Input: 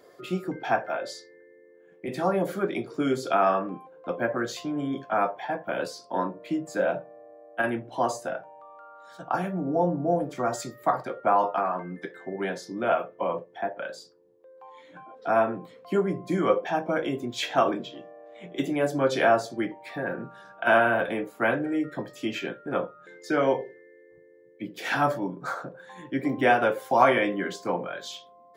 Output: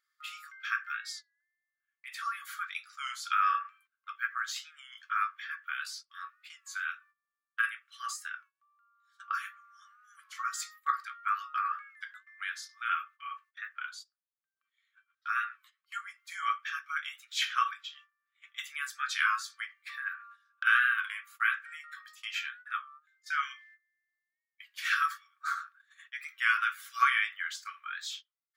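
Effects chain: gate -43 dBFS, range -19 dB; brick-wall FIR high-pass 1.1 kHz; warped record 33 1/3 rpm, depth 100 cents

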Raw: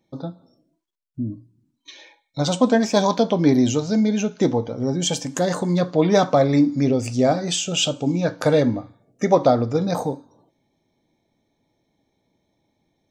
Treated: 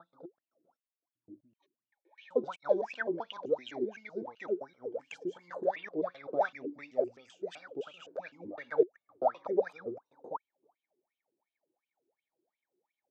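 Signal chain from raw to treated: slices played last to first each 128 ms, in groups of 3; wah-wah 2.8 Hz 350–2900 Hz, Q 20; trim +3.5 dB

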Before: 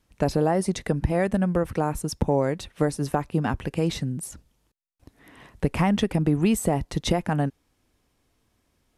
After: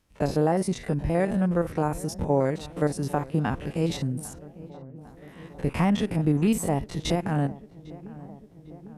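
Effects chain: spectrogram pixelated in time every 50 ms; filtered feedback delay 801 ms, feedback 74%, low-pass 1.4 kHz, level -18.5 dB

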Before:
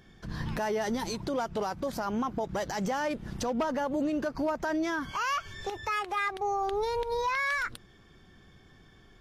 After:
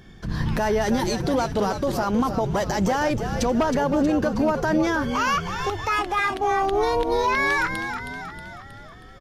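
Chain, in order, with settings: bass shelf 240 Hz +4 dB; frequency-shifting echo 317 ms, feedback 55%, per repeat -74 Hz, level -8 dB; trim +7 dB

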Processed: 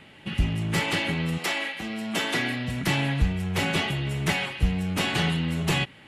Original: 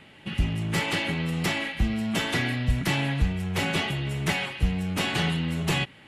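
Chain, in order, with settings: 1.37–2.82 s: high-pass 470 Hz -> 140 Hz 12 dB/octave; trim +1 dB

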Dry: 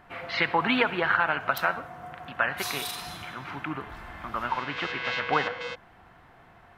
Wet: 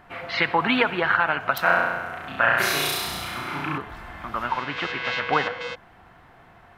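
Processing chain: 1.62–3.78 s: flutter echo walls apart 5.8 m, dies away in 1.2 s; trim +3 dB

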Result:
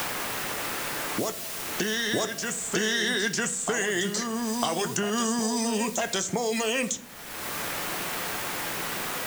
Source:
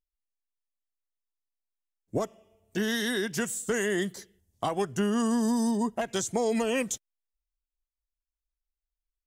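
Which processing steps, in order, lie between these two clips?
low-pass 7.7 kHz 24 dB/octave; tilt EQ +2.5 dB/octave; in parallel at 0 dB: compressor with a negative ratio -35 dBFS, ratio -0.5; on the sum: word length cut 8-bit, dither triangular; reverse echo 952 ms -9.5 dB; on a send at -9.5 dB: reverberation RT60 0.40 s, pre-delay 6 ms; on the sum: three bands compressed up and down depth 100%

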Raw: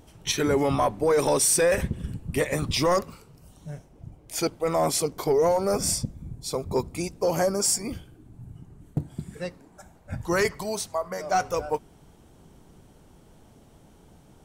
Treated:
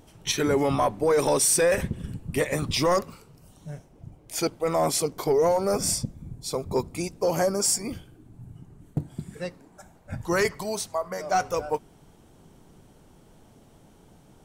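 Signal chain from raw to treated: peaking EQ 60 Hz -5.5 dB 0.77 oct

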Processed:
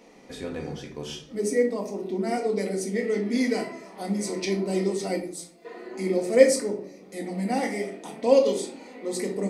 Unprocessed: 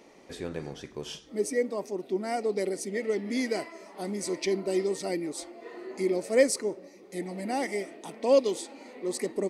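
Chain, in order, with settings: 5.20–5.65 s: pre-emphasis filter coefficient 0.8; simulated room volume 400 m³, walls furnished, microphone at 1.9 m

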